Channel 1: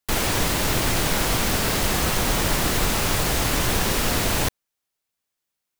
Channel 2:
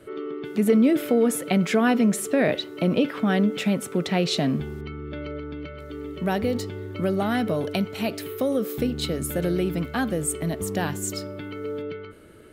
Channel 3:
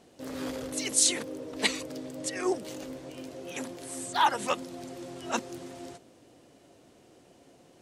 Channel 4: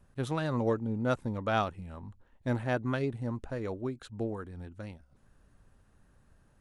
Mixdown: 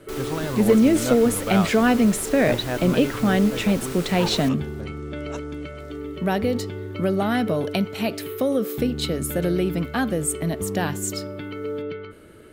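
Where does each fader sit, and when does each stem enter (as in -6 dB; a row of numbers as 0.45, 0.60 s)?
-14.5, +2.0, -9.5, +2.5 dB; 0.00, 0.00, 0.00, 0.00 s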